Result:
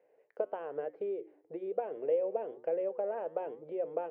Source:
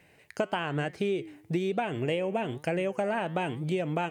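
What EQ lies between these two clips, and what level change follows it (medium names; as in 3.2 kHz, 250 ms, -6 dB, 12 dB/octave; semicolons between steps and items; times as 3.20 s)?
ladder band-pass 530 Hz, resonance 70%; distance through air 83 m; hum notches 60/120/180/240/300/360 Hz; +3.0 dB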